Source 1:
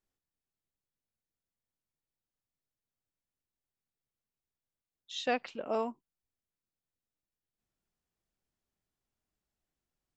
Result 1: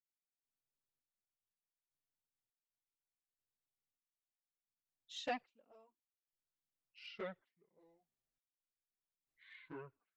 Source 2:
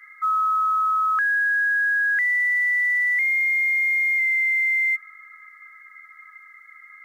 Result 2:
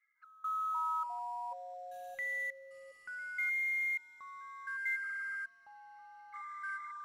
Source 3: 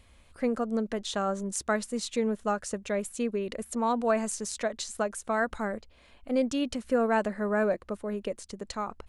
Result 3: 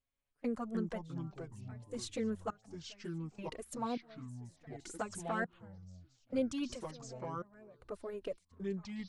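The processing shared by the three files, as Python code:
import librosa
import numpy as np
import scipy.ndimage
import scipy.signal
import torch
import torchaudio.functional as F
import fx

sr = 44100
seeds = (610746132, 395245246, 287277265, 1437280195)

y = fx.env_flanger(x, sr, rest_ms=7.7, full_db=-21.0)
y = fx.step_gate(y, sr, bpm=102, pattern='...xxxx...', floor_db=-24.0, edge_ms=4.5)
y = fx.echo_pitch(y, sr, ms=154, semitones=-5, count=3, db_per_echo=-6.0)
y = y * 10.0 ** (-5.5 / 20.0)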